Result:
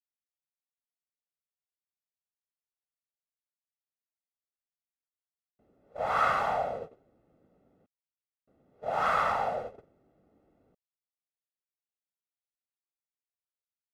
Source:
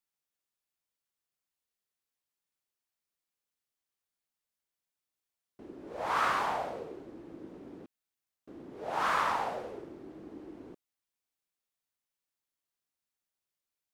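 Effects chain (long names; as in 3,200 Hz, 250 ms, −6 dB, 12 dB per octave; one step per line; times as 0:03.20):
noise gate −40 dBFS, range −19 dB
high-shelf EQ 2,700 Hz −10 dB
comb filter 1.5 ms, depth 69%
level +2.5 dB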